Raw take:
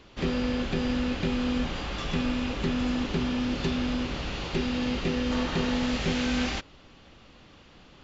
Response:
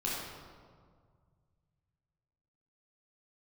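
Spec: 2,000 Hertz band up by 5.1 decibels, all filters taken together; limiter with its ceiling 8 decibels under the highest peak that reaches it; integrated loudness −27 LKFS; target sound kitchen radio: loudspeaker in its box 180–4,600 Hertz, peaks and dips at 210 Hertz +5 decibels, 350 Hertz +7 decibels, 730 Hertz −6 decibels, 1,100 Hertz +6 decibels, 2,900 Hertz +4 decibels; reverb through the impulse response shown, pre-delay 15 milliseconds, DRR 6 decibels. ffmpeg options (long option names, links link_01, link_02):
-filter_complex "[0:a]equalizer=frequency=2000:width_type=o:gain=5,alimiter=limit=-22dB:level=0:latency=1,asplit=2[link_01][link_02];[1:a]atrim=start_sample=2205,adelay=15[link_03];[link_02][link_03]afir=irnorm=-1:irlink=0,volume=-11.5dB[link_04];[link_01][link_04]amix=inputs=2:normalize=0,highpass=180,equalizer=frequency=210:width_type=q:width=4:gain=5,equalizer=frequency=350:width_type=q:width=4:gain=7,equalizer=frequency=730:width_type=q:width=4:gain=-6,equalizer=frequency=1100:width_type=q:width=4:gain=6,equalizer=frequency=2900:width_type=q:width=4:gain=4,lowpass=frequency=4600:width=0.5412,lowpass=frequency=4600:width=1.3066,volume=-1dB"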